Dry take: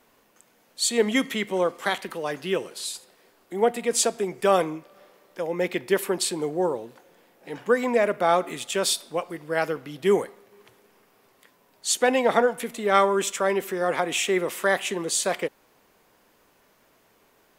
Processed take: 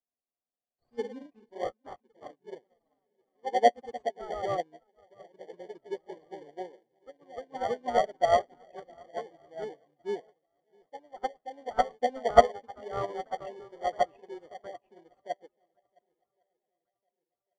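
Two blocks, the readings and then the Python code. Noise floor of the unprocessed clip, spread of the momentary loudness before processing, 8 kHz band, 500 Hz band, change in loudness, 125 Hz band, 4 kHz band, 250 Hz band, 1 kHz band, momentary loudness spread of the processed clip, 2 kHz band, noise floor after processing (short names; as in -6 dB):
-62 dBFS, 11 LU, under -25 dB, -7.5 dB, -6.0 dB, -11.0 dB, -15.0 dB, -15.5 dB, -2.5 dB, 23 LU, -13.5 dB, under -85 dBFS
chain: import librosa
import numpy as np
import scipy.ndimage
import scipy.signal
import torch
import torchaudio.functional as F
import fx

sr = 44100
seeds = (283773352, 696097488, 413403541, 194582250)

p1 = scipy.ndimage.median_filter(x, 25, mode='constant')
p2 = p1 + fx.echo_swing(p1, sr, ms=1105, ratio=1.5, feedback_pct=42, wet_db=-12.5, dry=0)
p3 = fx.spec_gate(p2, sr, threshold_db=-15, keep='strong')
p4 = fx.peak_eq(p3, sr, hz=190.0, db=-11.0, octaves=0.2)
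p5 = fx.notch(p4, sr, hz=1100.0, q=22.0)
p6 = fx.small_body(p5, sr, hz=(710.0, 1100.0), ring_ms=50, db=15)
p7 = fx.echo_pitch(p6, sr, ms=108, semitones=1, count=2, db_per_echo=-3.0)
p8 = fx.sample_hold(p7, sr, seeds[0], rate_hz=1300.0, jitter_pct=0)
p9 = p7 + F.gain(torch.from_numpy(p8), -6.0).numpy()
p10 = fx.air_absorb(p9, sr, metres=120.0)
p11 = fx.upward_expand(p10, sr, threshold_db=-34.0, expansion=2.5)
y = F.gain(torch.from_numpy(p11), -3.0).numpy()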